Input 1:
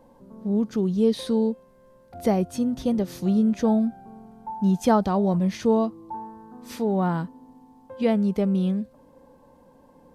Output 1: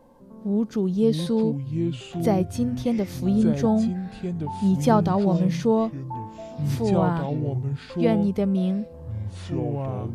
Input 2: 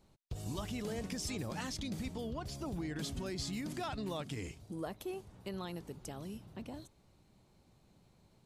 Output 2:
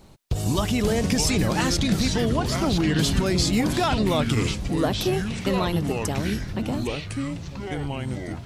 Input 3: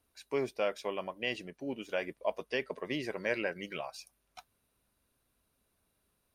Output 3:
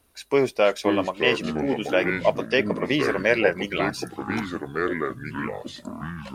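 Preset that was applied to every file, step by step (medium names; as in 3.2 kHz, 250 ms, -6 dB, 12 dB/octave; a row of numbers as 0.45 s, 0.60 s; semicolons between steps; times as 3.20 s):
ever faster or slower copies 419 ms, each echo -5 st, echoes 3, each echo -6 dB; normalise loudness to -24 LUFS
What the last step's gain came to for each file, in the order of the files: 0.0 dB, +16.5 dB, +12.5 dB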